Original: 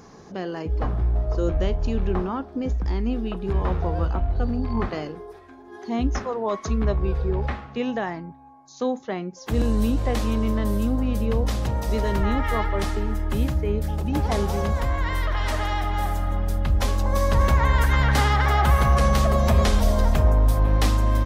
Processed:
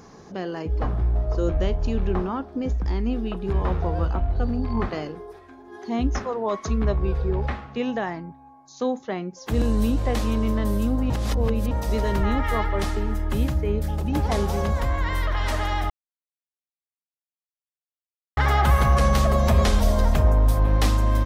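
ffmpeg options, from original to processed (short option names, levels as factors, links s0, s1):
-filter_complex "[0:a]asplit=5[s0][s1][s2][s3][s4];[s0]atrim=end=11.102[s5];[s1]atrim=start=11.098:end=11.712,asetpts=PTS-STARTPTS,areverse[s6];[s2]atrim=start=11.708:end=15.9,asetpts=PTS-STARTPTS,afade=t=out:st=4.188:d=0.004:c=hsin[s7];[s3]atrim=start=15.9:end=18.37,asetpts=PTS-STARTPTS,volume=0[s8];[s4]atrim=start=18.37,asetpts=PTS-STARTPTS,afade=t=in:d=0.004:c=hsin[s9];[s5][s6]acrossfade=d=0.004:c1=hsin:c2=hsin[s10];[s7][s8][s9]concat=n=3:v=0:a=1[s11];[s10][s11]acrossfade=d=0.004:c1=hsin:c2=hsin"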